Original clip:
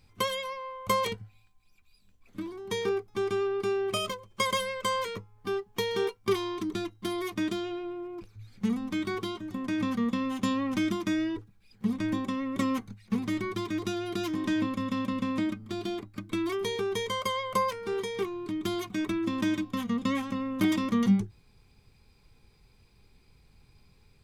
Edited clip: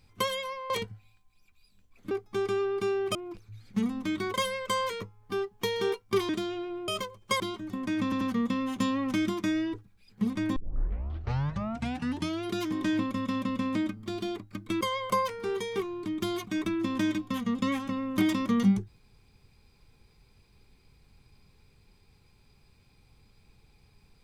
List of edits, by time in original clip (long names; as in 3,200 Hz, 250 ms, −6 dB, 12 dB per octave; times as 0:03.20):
0:00.70–0:01.00: remove
0:02.41–0:02.93: remove
0:03.97–0:04.49: swap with 0:08.02–0:09.21
0:06.44–0:07.43: remove
0:09.84: stutter 0.09 s, 3 plays
0:12.19: tape start 1.91 s
0:16.44–0:17.24: remove